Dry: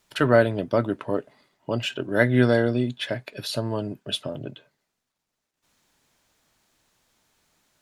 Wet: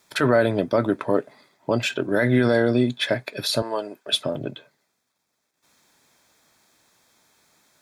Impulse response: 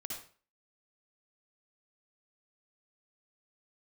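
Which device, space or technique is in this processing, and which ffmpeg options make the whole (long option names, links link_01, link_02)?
PA system with an anti-feedback notch: -filter_complex "[0:a]highpass=frequency=170:poles=1,asuperstop=centerf=2900:order=4:qfactor=7.7,alimiter=limit=-15.5dB:level=0:latency=1:release=30,asettb=1/sr,asplit=3[link_01][link_02][link_03];[link_01]atrim=end=3.624[link_04];[link_02]atrim=start=3.62:end=4.13,asetpts=PTS-STARTPTS,afade=type=in:duration=0.004:curve=qsin,afade=type=out:start_time=0.506:duration=0.004:curve=qsin,highpass=510[link_05];[link_03]atrim=start=4.126[link_06];[link_04][link_05]acrossfade=duration=0.004:curve1=hsin:curve2=qsin[link_07];[link_07][link_06]acrossfade=duration=0.004:curve1=qsin:curve2=hsin,volume=6.5dB"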